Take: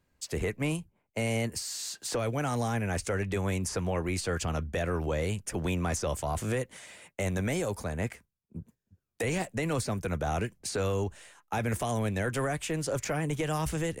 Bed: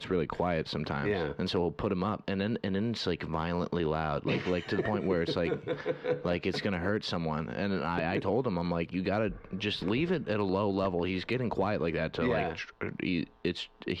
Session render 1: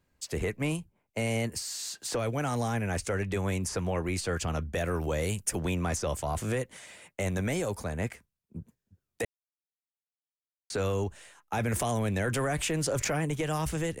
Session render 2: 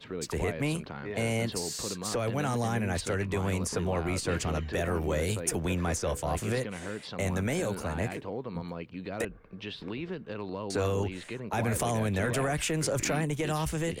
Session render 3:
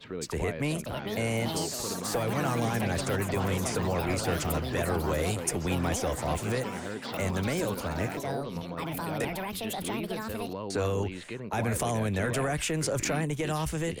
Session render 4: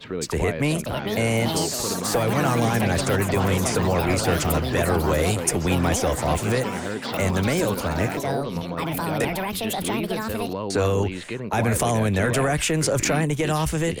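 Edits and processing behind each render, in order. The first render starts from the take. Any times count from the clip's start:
0:04.74–0:05.57: high-shelf EQ 11,000 Hz → 5,600 Hz +11.5 dB; 0:09.25–0:10.70: silence; 0:11.58–0:13.25: envelope flattener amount 70%
mix in bed −7.5 dB
delay with pitch and tempo change per echo 631 ms, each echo +6 semitones, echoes 3, each echo −6 dB
level +7.5 dB

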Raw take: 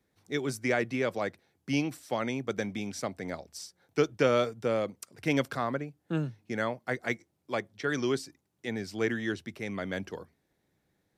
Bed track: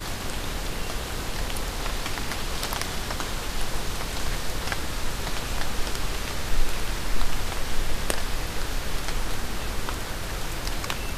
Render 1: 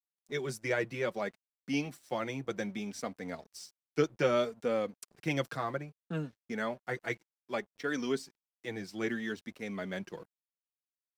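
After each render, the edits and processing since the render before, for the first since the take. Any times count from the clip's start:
flanger 0.63 Hz, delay 3.8 ms, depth 2.6 ms, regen −13%
dead-zone distortion −59.5 dBFS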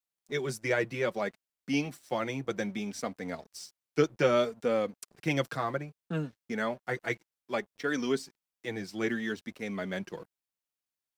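level +3 dB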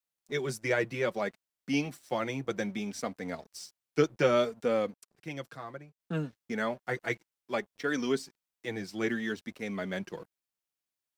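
0:04.94–0:06.00: clip gain −10.5 dB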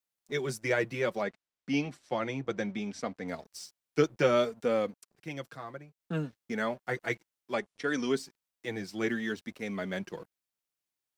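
0:01.22–0:03.28: high-frequency loss of the air 72 metres
0:07.53–0:08.12: bad sample-rate conversion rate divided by 2×, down none, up filtered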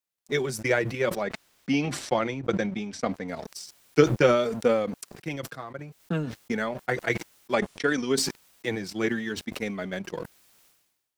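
transient designer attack +8 dB, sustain −11 dB
level that may fall only so fast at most 56 dB per second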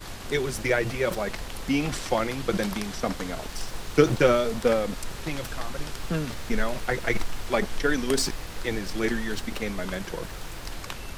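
mix in bed track −7 dB

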